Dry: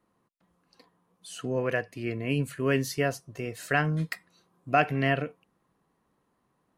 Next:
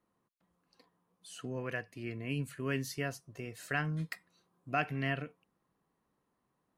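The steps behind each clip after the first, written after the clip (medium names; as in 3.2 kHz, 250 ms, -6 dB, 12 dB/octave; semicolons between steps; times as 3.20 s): dynamic bell 540 Hz, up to -6 dB, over -39 dBFS, Q 1.2; trim -7 dB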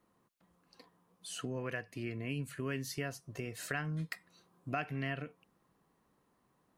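compression 2.5:1, threshold -44 dBFS, peak gain reduction 12 dB; trim +6 dB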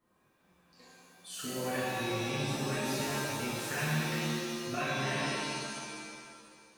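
pitch-shifted reverb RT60 1.9 s, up +7 st, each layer -2 dB, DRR -9.5 dB; trim -6 dB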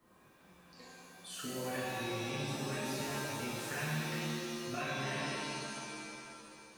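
three bands compressed up and down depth 40%; trim -4.5 dB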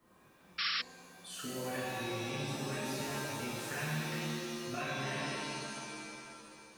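painted sound noise, 0.58–0.82 s, 1.1–5.6 kHz -34 dBFS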